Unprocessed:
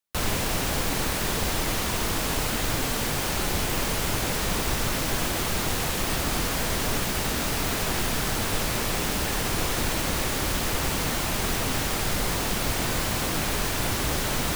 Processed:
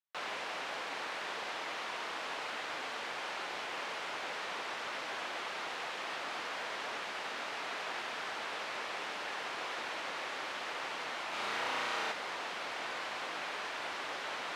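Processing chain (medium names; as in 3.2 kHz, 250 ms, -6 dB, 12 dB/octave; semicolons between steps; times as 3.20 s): band-pass 660–3100 Hz; 11.29–12.12 s: flutter echo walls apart 5.9 m, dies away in 1 s; trim -7 dB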